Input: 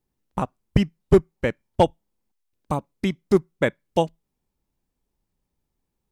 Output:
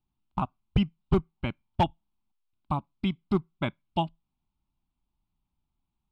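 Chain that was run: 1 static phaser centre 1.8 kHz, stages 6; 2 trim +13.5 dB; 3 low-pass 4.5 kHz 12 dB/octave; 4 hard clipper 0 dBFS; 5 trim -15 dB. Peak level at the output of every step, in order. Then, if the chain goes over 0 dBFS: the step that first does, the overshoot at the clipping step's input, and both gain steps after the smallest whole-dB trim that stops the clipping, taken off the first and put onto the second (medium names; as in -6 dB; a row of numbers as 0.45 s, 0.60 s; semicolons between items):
-6.0 dBFS, +7.5 dBFS, +7.5 dBFS, 0.0 dBFS, -15.0 dBFS; step 2, 7.5 dB; step 2 +5.5 dB, step 5 -7 dB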